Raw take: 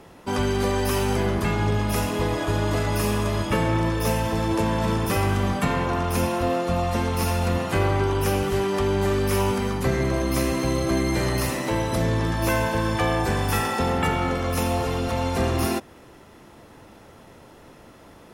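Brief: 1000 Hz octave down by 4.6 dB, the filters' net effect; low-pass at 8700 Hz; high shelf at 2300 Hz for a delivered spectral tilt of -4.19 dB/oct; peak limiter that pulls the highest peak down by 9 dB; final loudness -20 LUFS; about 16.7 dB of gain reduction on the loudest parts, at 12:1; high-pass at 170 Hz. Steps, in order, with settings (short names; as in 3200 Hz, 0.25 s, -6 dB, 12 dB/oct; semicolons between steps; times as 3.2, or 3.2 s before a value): HPF 170 Hz; LPF 8700 Hz; bell 1000 Hz -7 dB; high shelf 2300 Hz +5 dB; compressor 12:1, threshold -38 dBFS; gain +24 dB; limiter -11 dBFS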